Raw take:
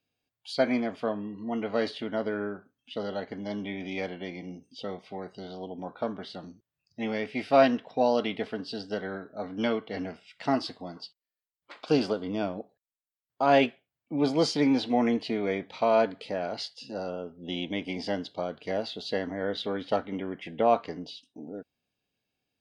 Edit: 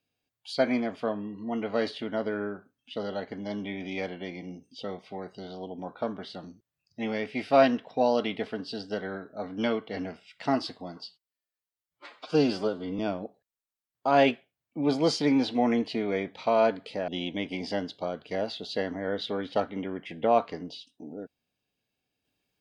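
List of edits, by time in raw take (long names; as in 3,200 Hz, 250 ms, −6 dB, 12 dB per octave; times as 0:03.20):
0:11.04–0:12.34: time-stretch 1.5×
0:16.43–0:17.44: remove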